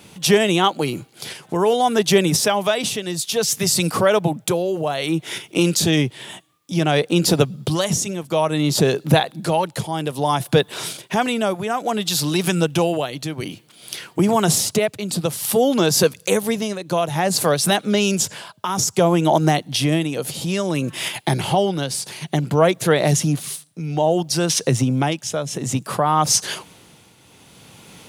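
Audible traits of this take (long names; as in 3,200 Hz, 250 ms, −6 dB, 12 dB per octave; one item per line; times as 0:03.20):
a quantiser's noise floor 12 bits, dither triangular
tremolo triangle 0.58 Hz, depth 65%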